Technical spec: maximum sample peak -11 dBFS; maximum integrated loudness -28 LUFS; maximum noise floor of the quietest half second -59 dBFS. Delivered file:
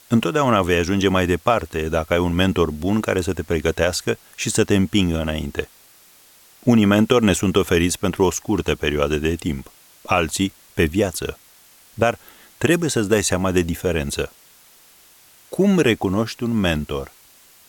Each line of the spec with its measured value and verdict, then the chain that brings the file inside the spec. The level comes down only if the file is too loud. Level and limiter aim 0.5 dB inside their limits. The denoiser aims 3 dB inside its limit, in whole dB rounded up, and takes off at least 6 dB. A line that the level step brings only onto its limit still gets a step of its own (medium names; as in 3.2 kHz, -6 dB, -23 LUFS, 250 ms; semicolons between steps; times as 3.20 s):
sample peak -3.0 dBFS: fail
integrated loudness -20.0 LUFS: fail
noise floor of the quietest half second -51 dBFS: fail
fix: trim -8.5 dB